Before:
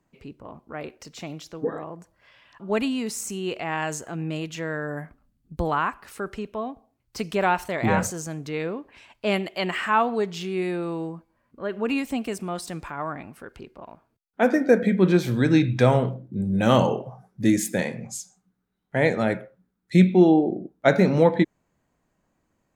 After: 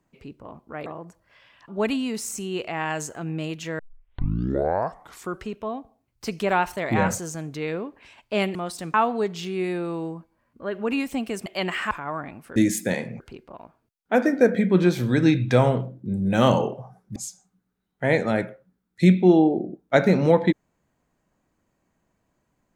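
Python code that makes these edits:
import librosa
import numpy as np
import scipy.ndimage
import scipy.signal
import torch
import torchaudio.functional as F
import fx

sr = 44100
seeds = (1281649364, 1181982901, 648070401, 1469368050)

y = fx.edit(x, sr, fx.cut(start_s=0.86, length_s=0.92),
    fx.tape_start(start_s=4.71, length_s=1.67),
    fx.swap(start_s=9.47, length_s=0.45, other_s=12.44, other_length_s=0.39),
    fx.move(start_s=17.44, length_s=0.64, to_s=13.48), tone=tone)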